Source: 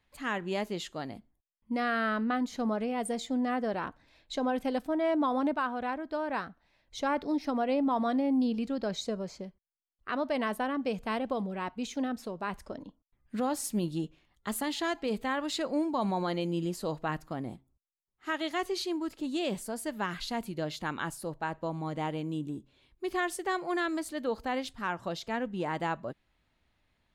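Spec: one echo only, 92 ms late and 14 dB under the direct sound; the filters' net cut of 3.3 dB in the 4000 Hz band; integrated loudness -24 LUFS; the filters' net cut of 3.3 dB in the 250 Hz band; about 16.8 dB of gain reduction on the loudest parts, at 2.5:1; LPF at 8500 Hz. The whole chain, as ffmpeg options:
-af "lowpass=8.5k,equalizer=f=250:t=o:g=-4,equalizer=f=4k:t=o:g=-4,acompressor=threshold=-54dB:ratio=2.5,aecho=1:1:92:0.2,volume=26dB"

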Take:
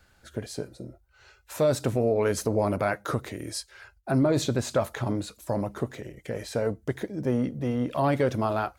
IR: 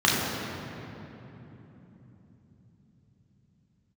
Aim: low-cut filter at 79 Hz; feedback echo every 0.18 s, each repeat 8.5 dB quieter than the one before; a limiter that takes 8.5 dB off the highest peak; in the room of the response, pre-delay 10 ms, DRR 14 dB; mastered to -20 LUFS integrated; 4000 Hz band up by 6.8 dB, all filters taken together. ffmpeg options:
-filter_complex "[0:a]highpass=79,equalizer=f=4k:t=o:g=8,alimiter=limit=-20.5dB:level=0:latency=1,aecho=1:1:180|360|540|720:0.376|0.143|0.0543|0.0206,asplit=2[a][b];[1:a]atrim=start_sample=2205,adelay=10[c];[b][c]afir=irnorm=-1:irlink=0,volume=-32.5dB[d];[a][d]amix=inputs=2:normalize=0,volume=11.5dB"

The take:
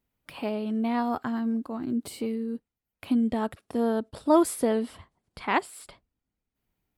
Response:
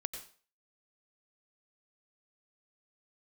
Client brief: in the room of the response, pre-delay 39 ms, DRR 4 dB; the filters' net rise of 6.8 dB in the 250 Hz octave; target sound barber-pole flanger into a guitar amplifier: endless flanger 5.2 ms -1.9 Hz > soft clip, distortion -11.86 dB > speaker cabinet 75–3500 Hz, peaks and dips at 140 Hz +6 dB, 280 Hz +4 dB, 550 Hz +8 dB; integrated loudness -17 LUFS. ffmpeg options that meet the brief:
-filter_complex "[0:a]equalizer=f=250:t=o:g=5.5,asplit=2[a][b];[1:a]atrim=start_sample=2205,adelay=39[c];[b][c]afir=irnorm=-1:irlink=0,volume=-4dB[d];[a][d]amix=inputs=2:normalize=0,asplit=2[e][f];[f]adelay=5.2,afreqshift=-1.9[g];[e][g]amix=inputs=2:normalize=1,asoftclip=threshold=-17dB,highpass=75,equalizer=f=140:t=q:w=4:g=6,equalizer=f=280:t=q:w=4:g=4,equalizer=f=550:t=q:w=4:g=8,lowpass=f=3.5k:w=0.5412,lowpass=f=3.5k:w=1.3066,volume=9dB"

